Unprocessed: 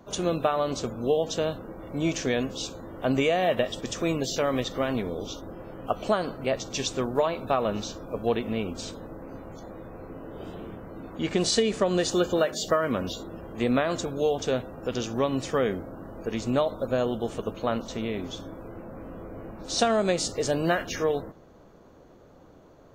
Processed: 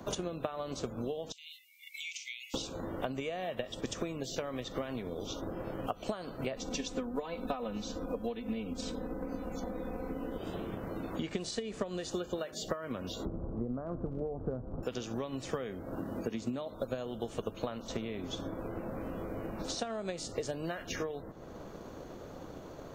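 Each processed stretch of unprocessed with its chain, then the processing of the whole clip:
0:01.32–0:02.54: linear-phase brick-wall high-pass 2,000 Hz + downward compressor 4 to 1, threshold −45 dBFS
0:06.56–0:10.38: low-shelf EQ 380 Hz +5 dB + comb filter 4 ms, depth 100%
0:13.25–0:14.83: Butterworth low-pass 1,400 Hz 48 dB per octave + spectral tilt −4 dB per octave
0:15.98–0:16.71: high-pass filter 55 Hz + parametric band 240 Hz +6.5 dB 0.95 octaves
whole clip: downward compressor 6 to 1, threshold −38 dBFS; transient designer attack +6 dB, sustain 0 dB; multiband upward and downward compressor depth 40%; level +1 dB

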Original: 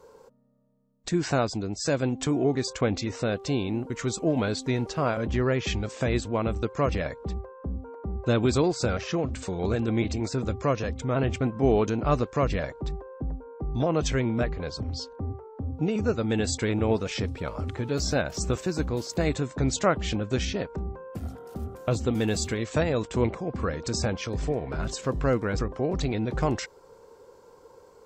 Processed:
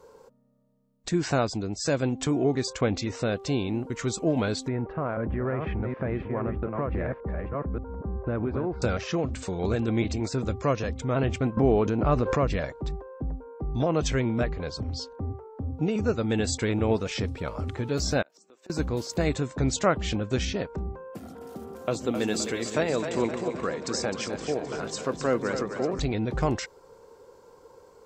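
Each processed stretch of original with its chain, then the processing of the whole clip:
0:04.68–0:08.82: delay that plays each chunk backwards 631 ms, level −6.5 dB + low-pass filter 1,900 Hz 24 dB per octave + downward compressor, threshold −24 dBFS
0:11.57–0:12.48: low-pass filter 2,000 Hz 6 dB per octave + background raised ahead of every attack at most 46 dB per second
0:18.22–0:18.70: high-pass filter 260 Hz 24 dB per octave + gate with flip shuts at −26 dBFS, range −27 dB
0:21.14–0:25.99: high-pass filter 210 Hz + echo with a time of its own for lows and highs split 390 Hz, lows 142 ms, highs 260 ms, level −7.5 dB
whole clip: no processing

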